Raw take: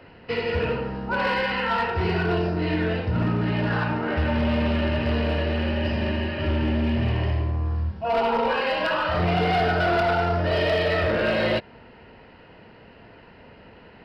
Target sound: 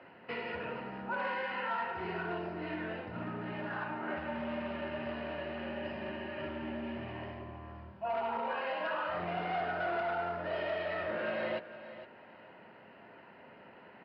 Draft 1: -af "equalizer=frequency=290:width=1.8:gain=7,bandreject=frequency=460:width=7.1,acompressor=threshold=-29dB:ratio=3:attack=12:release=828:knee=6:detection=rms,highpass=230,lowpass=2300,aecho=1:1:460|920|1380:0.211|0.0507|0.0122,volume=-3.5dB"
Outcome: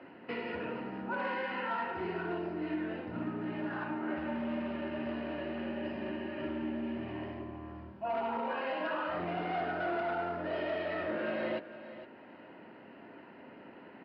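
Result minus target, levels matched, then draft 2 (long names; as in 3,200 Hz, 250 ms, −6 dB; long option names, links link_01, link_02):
250 Hz band +4.5 dB
-af "equalizer=frequency=290:width=1.8:gain=-3.5,bandreject=frequency=460:width=7.1,acompressor=threshold=-29dB:ratio=3:attack=12:release=828:knee=6:detection=rms,highpass=230,lowpass=2300,aecho=1:1:460|920|1380:0.211|0.0507|0.0122,volume=-3.5dB"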